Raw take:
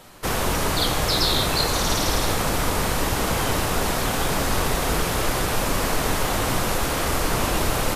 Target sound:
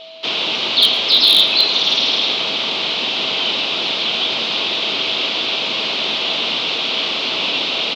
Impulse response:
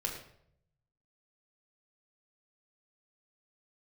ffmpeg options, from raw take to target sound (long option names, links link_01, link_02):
-filter_complex "[0:a]aexciter=amount=9.3:drive=9.4:freq=2800,highpass=frequency=260:width_type=q:width=0.5412,highpass=frequency=260:width_type=q:width=1.307,lowpass=frequency=3600:width_type=q:width=0.5176,lowpass=frequency=3600:width_type=q:width=0.7071,lowpass=frequency=3600:width_type=q:width=1.932,afreqshift=-52,aeval=exprs='0.891*(abs(mod(val(0)/0.891+3,4)-2)-1)':channel_layout=same,asplit=2[link_01][link_02];[link_02]aecho=0:1:112:0.0891[link_03];[link_01][link_03]amix=inputs=2:normalize=0,aeval=exprs='val(0)+0.02*sin(2*PI*650*n/s)':channel_layout=same,volume=-2.5dB"